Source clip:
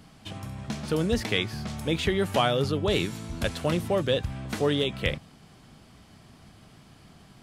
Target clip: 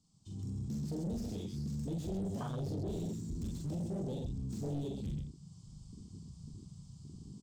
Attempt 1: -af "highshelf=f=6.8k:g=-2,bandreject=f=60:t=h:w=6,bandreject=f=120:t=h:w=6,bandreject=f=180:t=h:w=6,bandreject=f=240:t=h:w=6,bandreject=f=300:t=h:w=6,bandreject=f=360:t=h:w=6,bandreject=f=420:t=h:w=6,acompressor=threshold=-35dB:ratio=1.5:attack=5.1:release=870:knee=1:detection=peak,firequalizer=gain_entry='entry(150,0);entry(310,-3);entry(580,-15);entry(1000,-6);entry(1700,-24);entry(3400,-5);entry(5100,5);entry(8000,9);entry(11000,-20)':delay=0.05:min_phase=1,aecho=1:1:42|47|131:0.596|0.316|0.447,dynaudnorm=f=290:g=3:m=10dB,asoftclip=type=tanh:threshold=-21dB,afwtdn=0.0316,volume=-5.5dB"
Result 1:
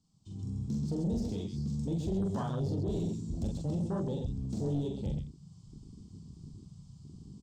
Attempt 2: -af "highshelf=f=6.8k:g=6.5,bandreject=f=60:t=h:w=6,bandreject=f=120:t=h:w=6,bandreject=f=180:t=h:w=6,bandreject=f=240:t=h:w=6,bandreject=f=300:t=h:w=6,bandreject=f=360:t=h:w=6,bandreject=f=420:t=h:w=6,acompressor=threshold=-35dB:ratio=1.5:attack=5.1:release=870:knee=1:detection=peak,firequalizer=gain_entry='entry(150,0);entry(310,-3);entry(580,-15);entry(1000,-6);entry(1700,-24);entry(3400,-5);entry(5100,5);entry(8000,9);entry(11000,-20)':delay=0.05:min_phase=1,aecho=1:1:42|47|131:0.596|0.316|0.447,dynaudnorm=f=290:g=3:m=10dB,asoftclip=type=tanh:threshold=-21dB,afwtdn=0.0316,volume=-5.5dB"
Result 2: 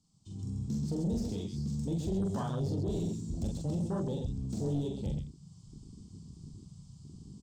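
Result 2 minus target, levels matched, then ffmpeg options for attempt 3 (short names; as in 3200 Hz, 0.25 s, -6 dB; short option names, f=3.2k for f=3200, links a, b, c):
soft clip: distortion -6 dB
-af "highshelf=f=6.8k:g=6.5,bandreject=f=60:t=h:w=6,bandreject=f=120:t=h:w=6,bandreject=f=180:t=h:w=6,bandreject=f=240:t=h:w=6,bandreject=f=300:t=h:w=6,bandreject=f=360:t=h:w=6,bandreject=f=420:t=h:w=6,acompressor=threshold=-35dB:ratio=1.5:attack=5.1:release=870:knee=1:detection=peak,firequalizer=gain_entry='entry(150,0);entry(310,-3);entry(580,-15);entry(1000,-6);entry(1700,-24);entry(3400,-5);entry(5100,5);entry(8000,9);entry(11000,-20)':delay=0.05:min_phase=1,aecho=1:1:42|47|131:0.596|0.316|0.447,dynaudnorm=f=290:g=3:m=10dB,asoftclip=type=tanh:threshold=-28.5dB,afwtdn=0.0316,volume=-5.5dB"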